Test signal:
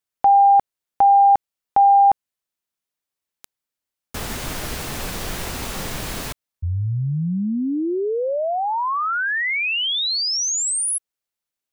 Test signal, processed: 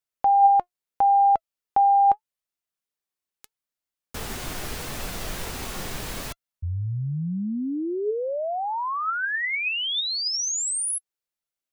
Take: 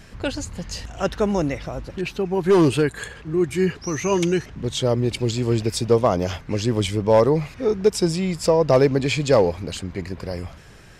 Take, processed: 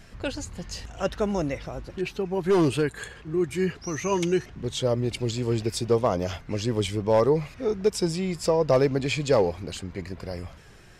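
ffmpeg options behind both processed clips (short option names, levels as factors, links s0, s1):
-af "flanger=delay=1.4:depth=1.4:regen=81:speed=0.78:shape=sinusoidal"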